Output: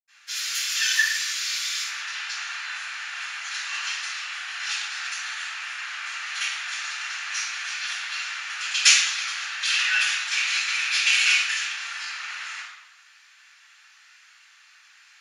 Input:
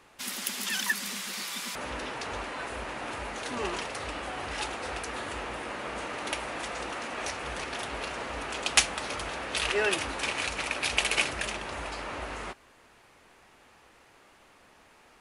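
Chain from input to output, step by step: inverse Chebyshev high-pass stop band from 350 Hz, stop band 70 dB; 11.22–12.14 crackle 51/s -56 dBFS; reverb RT60 1.1 s, pre-delay 77 ms, DRR -60 dB; gain -3 dB

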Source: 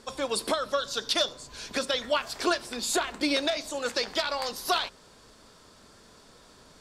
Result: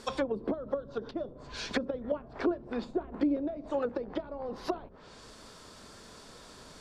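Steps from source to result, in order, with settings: treble ducked by the level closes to 320 Hz, closed at -26 dBFS; gain +3.5 dB

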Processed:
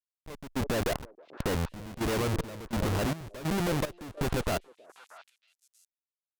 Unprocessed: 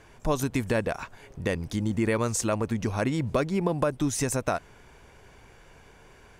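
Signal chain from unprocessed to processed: median filter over 9 samples; tone controls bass -2 dB, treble -10 dB; AGC gain up to 12.5 dB; Schmitt trigger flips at -22.5 dBFS; delay with a stepping band-pass 0.317 s, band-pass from 460 Hz, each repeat 1.4 oct, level -8.5 dB; step gate "xxx....xx" 187 bpm -12 dB; added harmonics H 3 -18 dB, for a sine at -12 dBFS; gain -5.5 dB

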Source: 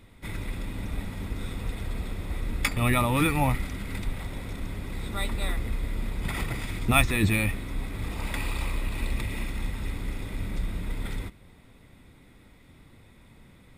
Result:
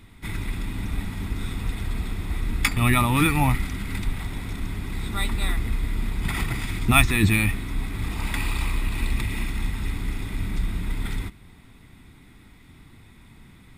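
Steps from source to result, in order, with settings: bell 540 Hz -12.5 dB 0.49 oct; gain +4.5 dB

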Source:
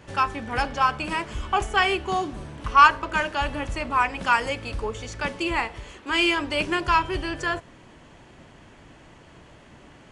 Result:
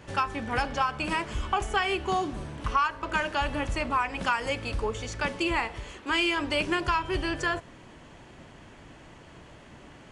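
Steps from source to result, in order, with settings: compressor 8:1, threshold -22 dBFS, peak gain reduction 13.5 dB

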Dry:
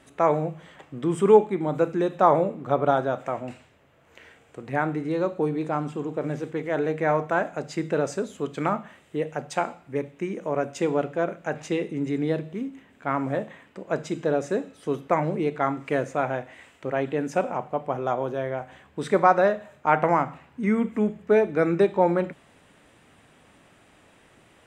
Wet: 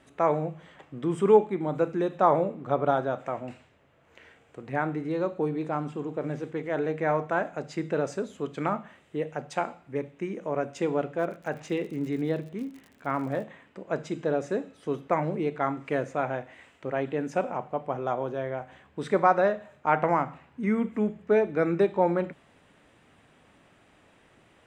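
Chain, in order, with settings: high shelf 8100 Hz -9 dB; 11.18–13.43 crackle 74/s -37 dBFS; gain -3 dB

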